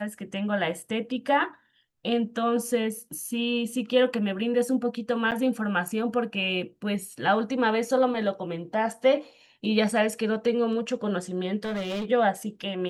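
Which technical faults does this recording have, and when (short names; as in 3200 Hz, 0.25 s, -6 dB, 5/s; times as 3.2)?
5.31–5.32 gap 8 ms
11.64–12.05 clipped -27 dBFS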